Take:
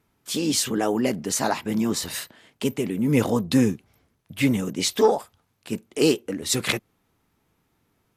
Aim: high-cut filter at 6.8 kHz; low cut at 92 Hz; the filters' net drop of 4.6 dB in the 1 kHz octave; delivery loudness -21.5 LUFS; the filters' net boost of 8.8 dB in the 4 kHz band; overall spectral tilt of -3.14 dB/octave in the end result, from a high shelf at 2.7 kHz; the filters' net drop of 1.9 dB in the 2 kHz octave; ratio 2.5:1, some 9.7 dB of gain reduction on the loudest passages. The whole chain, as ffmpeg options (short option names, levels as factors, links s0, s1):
-af "highpass=92,lowpass=6800,equalizer=f=1000:t=o:g=-6,equalizer=f=2000:t=o:g=-8,highshelf=f=2700:g=9,equalizer=f=4000:t=o:g=6,acompressor=threshold=0.0398:ratio=2.5,volume=2.37"